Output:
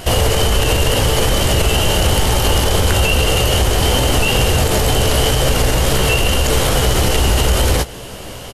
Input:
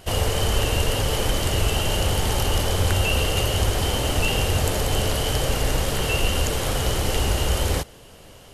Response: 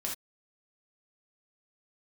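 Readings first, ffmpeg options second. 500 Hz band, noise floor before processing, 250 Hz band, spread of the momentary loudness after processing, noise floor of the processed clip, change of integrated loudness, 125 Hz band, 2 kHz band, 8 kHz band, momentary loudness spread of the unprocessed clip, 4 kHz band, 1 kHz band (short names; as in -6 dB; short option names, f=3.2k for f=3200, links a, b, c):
+8.5 dB, -46 dBFS, +8.5 dB, 1 LU, -31 dBFS, +8.0 dB, +7.0 dB, +8.0 dB, +8.5 dB, 2 LU, +8.0 dB, +8.0 dB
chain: -filter_complex "[0:a]asplit=2[a][b];[b]acompressor=threshold=-28dB:ratio=6,volume=0dB[c];[a][c]amix=inputs=2:normalize=0,asplit=2[d][e];[e]adelay=16,volume=-8dB[f];[d][f]amix=inputs=2:normalize=0,alimiter=level_in=13dB:limit=-1dB:release=50:level=0:latency=1,volume=-4dB"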